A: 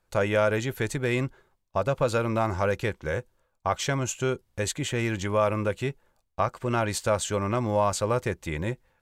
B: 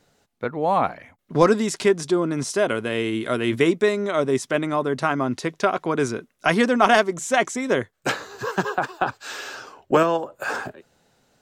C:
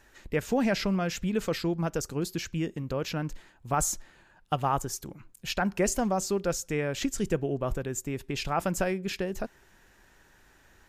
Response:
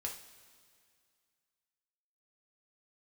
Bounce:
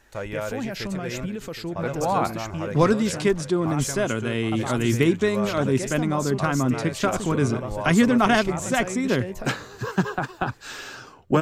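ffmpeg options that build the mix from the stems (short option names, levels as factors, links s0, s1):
-filter_complex "[0:a]volume=0.422,asplit=2[s0][s1];[s1]volume=0.266[s2];[1:a]asubboost=boost=4:cutoff=240,adelay=1400,volume=0.75[s3];[2:a]alimiter=limit=0.0631:level=0:latency=1:release=92,volume=1.12[s4];[s2]aecho=0:1:768|1536|2304|3072|3840:1|0.37|0.137|0.0507|0.0187[s5];[s0][s3][s4][s5]amix=inputs=4:normalize=0"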